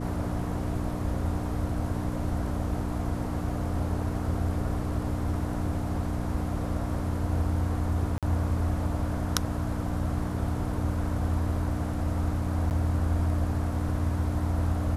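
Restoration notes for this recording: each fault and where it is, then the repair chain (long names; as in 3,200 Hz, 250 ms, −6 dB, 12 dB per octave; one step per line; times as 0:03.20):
mains hum 60 Hz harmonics 5 −33 dBFS
0:08.18–0:08.23: drop-out 47 ms
0:12.70–0:12.71: drop-out 9.5 ms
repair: hum removal 60 Hz, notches 5
repair the gap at 0:08.18, 47 ms
repair the gap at 0:12.70, 9.5 ms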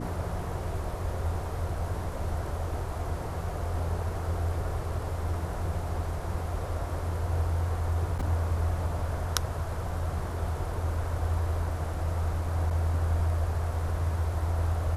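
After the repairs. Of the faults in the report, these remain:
none of them is left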